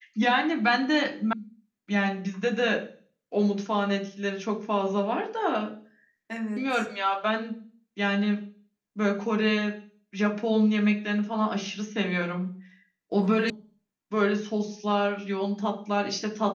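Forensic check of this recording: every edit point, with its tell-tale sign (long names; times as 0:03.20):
0:01.33: cut off before it has died away
0:13.50: cut off before it has died away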